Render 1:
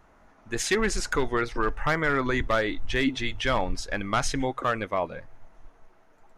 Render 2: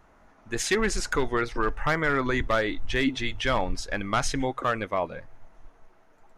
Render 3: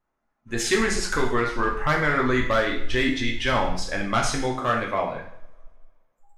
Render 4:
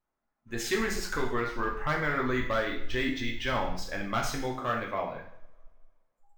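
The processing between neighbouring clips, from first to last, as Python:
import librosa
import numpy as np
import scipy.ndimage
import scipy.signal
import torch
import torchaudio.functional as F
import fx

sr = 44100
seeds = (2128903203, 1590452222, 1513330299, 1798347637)

y1 = x
y2 = fx.noise_reduce_blind(y1, sr, reduce_db=23)
y2 = fx.rev_double_slope(y2, sr, seeds[0], early_s=0.6, late_s=2.2, knee_db=-27, drr_db=-0.5)
y3 = np.interp(np.arange(len(y2)), np.arange(len(y2))[::2], y2[::2])
y3 = y3 * librosa.db_to_amplitude(-7.0)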